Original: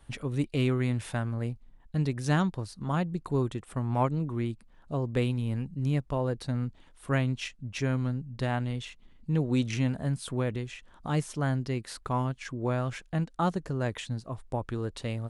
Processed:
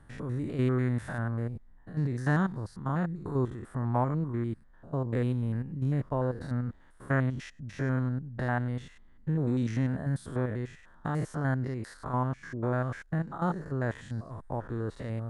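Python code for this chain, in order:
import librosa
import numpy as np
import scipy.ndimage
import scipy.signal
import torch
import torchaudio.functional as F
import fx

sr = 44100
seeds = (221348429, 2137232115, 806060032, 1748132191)

y = fx.spec_steps(x, sr, hold_ms=100)
y = fx.high_shelf_res(y, sr, hz=2100.0, db=-6.0, q=3.0)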